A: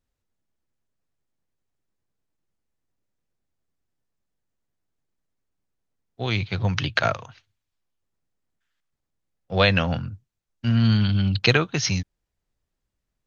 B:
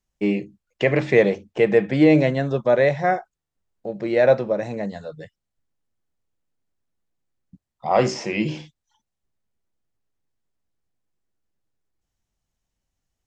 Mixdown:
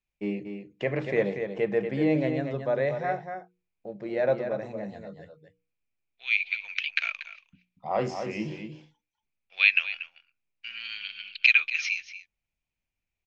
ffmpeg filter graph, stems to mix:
ffmpeg -i stem1.wav -i stem2.wav -filter_complex "[0:a]highpass=frequency=2400:width_type=q:width=10,volume=-9dB,asplit=3[link_01][link_02][link_03];[link_02]volume=-14dB[link_04];[1:a]bandreject=frequency=60:width_type=h:width=6,bandreject=frequency=120:width_type=h:width=6,bandreject=frequency=180:width_type=h:width=6,bandreject=frequency=240:width_type=h:width=6,bandreject=frequency=300:width_type=h:width=6,bandreject=frequency=360:width_type=h:width=6,bandreject=frequency=420:width_type=h:width=6,bandreject=frequency=480:width_type=h:width=6,volume=1dB,asplit=2[link_05][link_06];[link_06]volume=-17.5dB[link_07];[link_03]apad=whole_len=584989[link_08];[link_05][link_08]sidechaingate=range=-10dB:threshold=-49dB:ratio=16:detection=peak[link_09];[link_04][link_07]amix=inputs=2:normalize=0,aecho=0:1:236:1[link_10];[link_01][link_09][link_10]amix=inputs=3:normalize=0,highshelf=frequency=4900:gain=-9.5" out.wav

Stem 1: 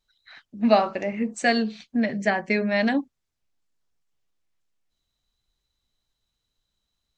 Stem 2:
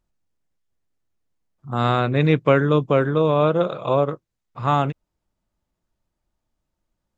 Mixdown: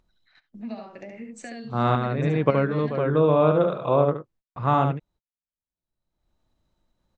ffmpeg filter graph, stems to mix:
ffmpeg -i stem1.wav -i stem2.wav -filter_complex "[0:a]acrossover=split=290[link_01][link_02];[link_02]acompressor=threshold=-27dB:ratio=4[link_03];[link_01][link_03]amix=inputs=2:normalize=0,volume=-14dB,asplit=3[link_04][link_05][link_06];[link_05]volume=-3dB[link_07];[1:a]lowpass=frequency=1800:poles=1,volume=-1dB,asplit=2[link_08][link_09];[link_09]volume=-6dB[link_10];[link_06]apad=whole_len=316441[link_11];[link_08][link_11]sidechaincompress=threshold=-50dB:ratio=8:attack=37:release=119[link_12];[link_07][link_10]amix=inputs=2:normalize=0,aecho=0:1:72:1[link_13];[link_04][link_12][link_13]amix=inputs=3:normalize=0,agate=range=-42dB:threshold=-54dB:ratio=16:detection=peak,acompressor=mode=upward:threshold=-34dB:ratio=2.5" out.wav

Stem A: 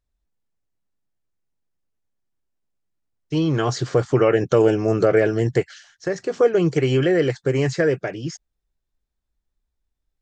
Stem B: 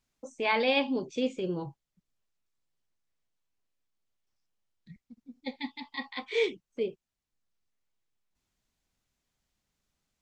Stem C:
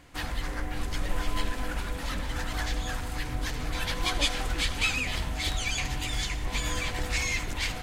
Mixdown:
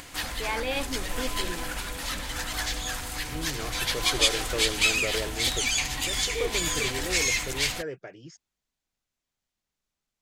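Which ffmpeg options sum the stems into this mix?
ffmpeg -i stem1.wav -i stem2.wav -i stem3.wav -filter_complex "[0:a]volume=-14.5dB[link_01];[1:a]volume=-3.5dB[link_02];[2:a]highshelf=frequency=3100:gain=10,acompressor=mode=upward:threshold=-35dB:ratio=2.5,volume=0dB[link_03];[link_01][link_02][link_03]amix=inputs=3:normalize=0,lowshelf=frequency=290:gain=-5.5" out.wav

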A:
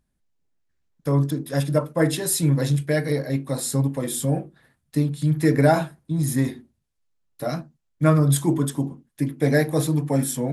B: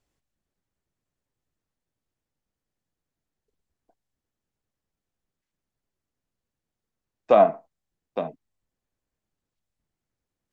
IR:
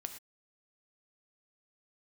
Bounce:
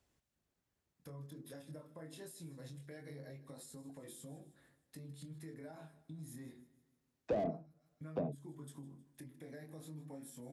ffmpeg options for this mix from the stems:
-filter_complex "[0:a]acompressor=threshold=-29dB:ratio=6,flanger=delay=18.5:depth=7.2:speed=0.25,alimiter=level_in=9dB:limit=-24dB:level=0:latency=1:release=262,volume=-9dB,volume=-8.5dB,asplit=2[link_01][link_02];[link_02]volume=-19dB[link_03];[1:a]asoftclip=type=tanh:threshold=-23dB,volume=0dB[link_04];[link_03]aecho=0:1:156|312|468|624|780|936|1092:1|0.5|0.25|0.125|0.0625|0.0312|0.0156[link_05];[link_01][link_04][link_05]amix=inputs=3:normalize=0,highpass=43,acrossover=split=490[link_06][link_07];[link_07]acompressor=threshold=-51dB:ratio=10[link_08];[link_06][link_08]amix=inputs=2:normalize=0"

